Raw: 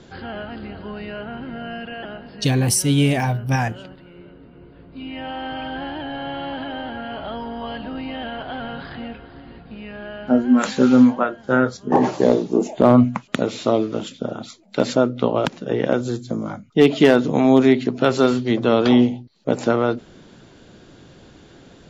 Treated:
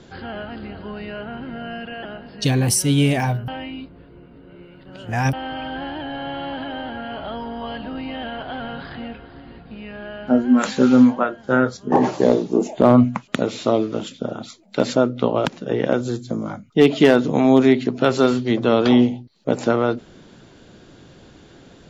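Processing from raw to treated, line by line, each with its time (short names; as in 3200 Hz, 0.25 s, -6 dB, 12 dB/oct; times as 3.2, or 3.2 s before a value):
3.48–5.33 reverse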